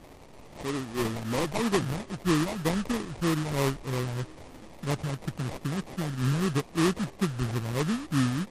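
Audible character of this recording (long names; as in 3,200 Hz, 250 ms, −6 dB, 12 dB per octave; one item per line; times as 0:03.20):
a quantiser's noise floor 8 bits, dither triangular
phaser sweep stages 8, 3.1 Hz, lowest notch 390–1,700 Hz
aliases and images of a low sample rate 1,500 Hz, jitter 20%
MP3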